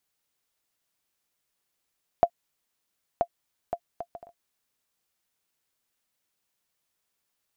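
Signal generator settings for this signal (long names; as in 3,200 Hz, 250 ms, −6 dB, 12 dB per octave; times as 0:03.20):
bouncing ball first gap 0.98 s, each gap 0.53, 690 Hz, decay 68 ms −7.5 dBFS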